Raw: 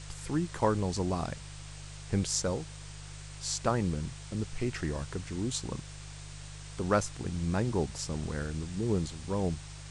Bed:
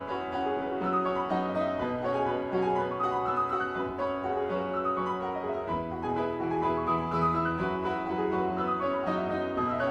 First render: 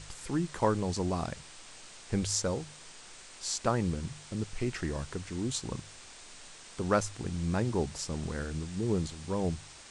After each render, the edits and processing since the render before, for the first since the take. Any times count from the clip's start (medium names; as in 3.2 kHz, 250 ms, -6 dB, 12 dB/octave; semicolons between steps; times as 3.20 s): de-hum 50 Hz, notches 3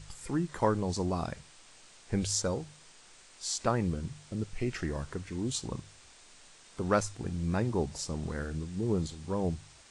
noise print and reduce 6 dB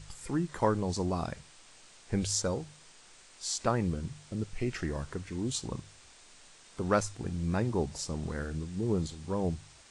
no audible change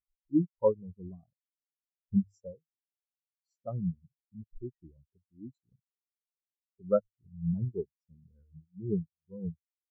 transient shaper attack 0 dB, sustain -4 dB; spectral contrast expander 4:1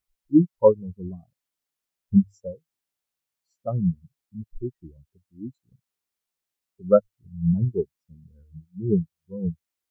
trim +9.5 dB